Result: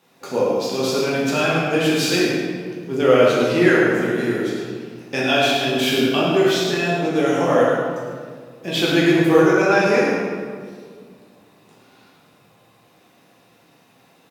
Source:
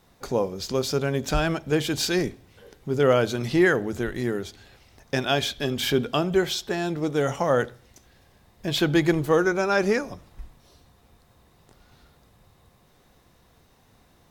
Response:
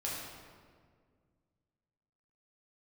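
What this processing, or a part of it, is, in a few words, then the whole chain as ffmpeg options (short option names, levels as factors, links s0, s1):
PA in a hall: -filter_complex "[0:a]highpass=f=150:w=0.5412,highpass=f=150:w=1.3066,equalizer=f=2600:t=o:w=0.39:g=7,aecho=1:1:106:0.398[s0];[1:a]atrim=start_sample=2205[s1];[s0][s1]afir=irnorm=-1:irlink=0,volume=1.26"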